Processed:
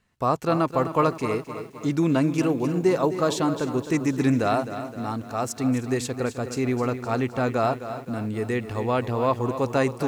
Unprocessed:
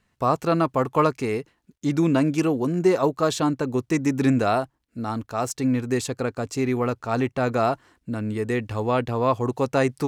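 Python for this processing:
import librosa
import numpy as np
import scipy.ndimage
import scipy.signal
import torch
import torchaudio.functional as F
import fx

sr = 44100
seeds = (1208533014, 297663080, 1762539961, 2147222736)

y = x + 10.0 ** (-20.0 / 20.0) * np.pad(x, (int(309 * sr / 1000.0), 0))[:len(x)]
y = fx.echo_crushed(y, sr, ms=260, feedback_pct=55, bits=8, wet_db=-11.0)
y = y * librosa.db_to_amplitude(-1.5)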